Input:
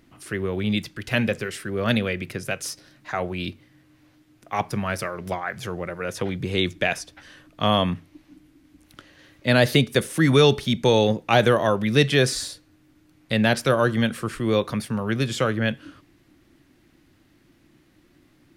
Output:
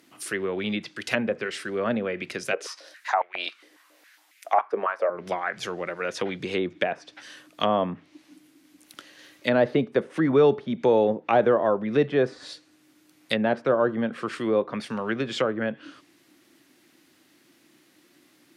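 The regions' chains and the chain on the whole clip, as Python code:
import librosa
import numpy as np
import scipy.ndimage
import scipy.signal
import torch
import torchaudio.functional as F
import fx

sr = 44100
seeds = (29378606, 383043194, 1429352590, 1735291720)

y = fx.chain(x, sr, fx.high_shelf(hz=9600.0, db=5.0),
    fx.filter_held_highpass(hz=7.3, low_hz=430.0, high_hz=2100.0), at=(2.53, 5.1))
y = scipy.signal.sosfilt(scipy.signal.butter(2, 260.0, 'highpass', fs=sr, output='sos'), y)
y = fx.env_lowpass_down(y, sr, base_hz=980.0, full_db=-21.0)
y = fx.high_shelf(y, sr, hz=3300.0, db=8.5)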